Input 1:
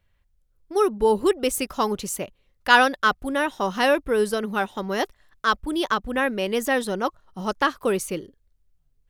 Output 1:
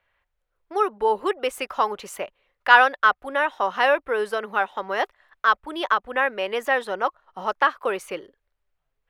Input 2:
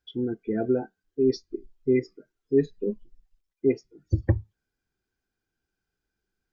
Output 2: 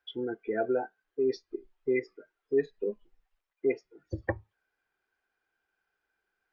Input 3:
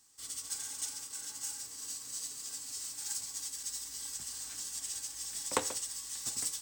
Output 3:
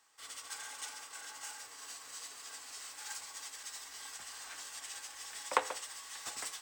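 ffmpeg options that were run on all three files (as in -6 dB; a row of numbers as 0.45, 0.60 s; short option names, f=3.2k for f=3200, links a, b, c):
-filter_complex "[0:a]acrossover=split=500 2900:gain=0.0891 1 0.141[a][b][c];[a][b][c]amix=inputs=3:normalize=0,asplit=2[d][e];[e]acompressor=threshold=-39dB:ratio=6,volume=-0.5dB[f];[d][f]amix=inputs=2:normalize=0,volume=2.5dB"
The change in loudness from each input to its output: +0.5, -5.5, -5.0 LU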